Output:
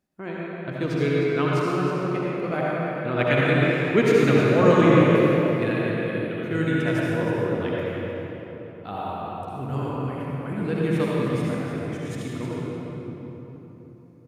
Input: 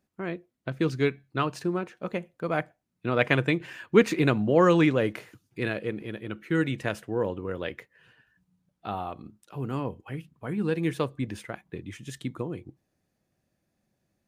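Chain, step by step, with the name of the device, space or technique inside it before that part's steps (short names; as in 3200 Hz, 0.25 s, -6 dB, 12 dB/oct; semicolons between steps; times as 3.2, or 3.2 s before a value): cave (echo 0.311 s -10.5 dB; reverb RT60 3.7 s, pre-delay 59 ms, DRR -6 dB); gain -2.5 dB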